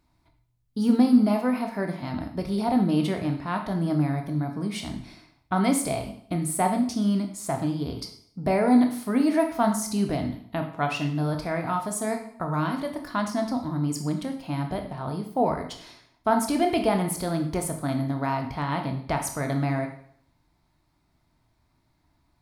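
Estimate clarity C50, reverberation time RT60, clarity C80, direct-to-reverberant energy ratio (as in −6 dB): 8.0 dB, 0.60 s, 11.0 dB, 4.0 dB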